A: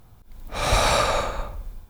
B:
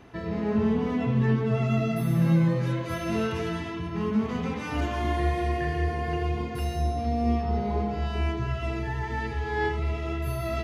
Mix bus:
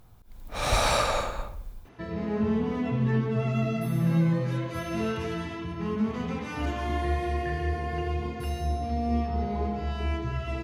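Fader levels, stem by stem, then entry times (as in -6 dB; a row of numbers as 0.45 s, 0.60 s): -4.0 dB, -2.0 dB; 0.00 s, 1.85 s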